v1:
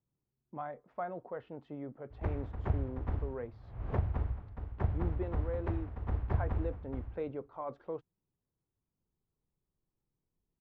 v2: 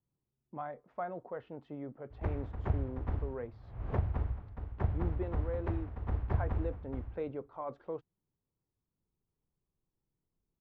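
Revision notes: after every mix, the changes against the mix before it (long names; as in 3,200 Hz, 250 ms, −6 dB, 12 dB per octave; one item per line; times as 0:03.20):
nothing changed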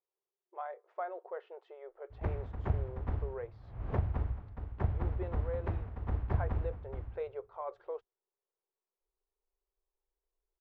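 speech: add linear-phase brick-wall high-pass 350 Hz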